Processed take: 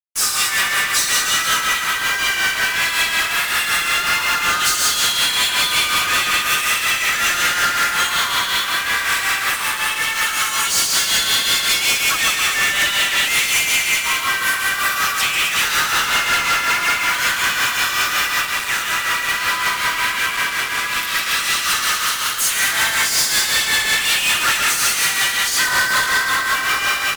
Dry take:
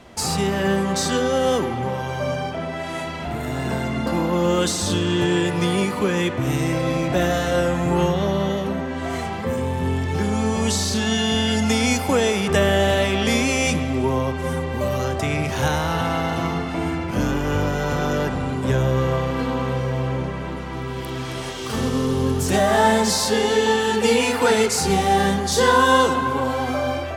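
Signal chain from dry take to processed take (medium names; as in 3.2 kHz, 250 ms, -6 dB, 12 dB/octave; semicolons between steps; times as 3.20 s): drifting ripple filter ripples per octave 1.8, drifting +0.34 Hz, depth 9 dB; treble shelf 9.3 kHz +11.5 dB; comb 7.2 ms, depth 64%; vibrato 1.5 Hz 25 cents; level rider gain up to 8 dB; Chebyshev high-pass 1.2 kHz, order 4; bouncing-ball echo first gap 140 ms, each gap 0.9×, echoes 5; harmony voices +3 st -8 dB, +4 st -5 dB; treble shelf 3.4 kHz -7.5 dB; fuzz box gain 34 dB, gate -33 dBFS; tremolo triangle 5.4 Hz, depth 55%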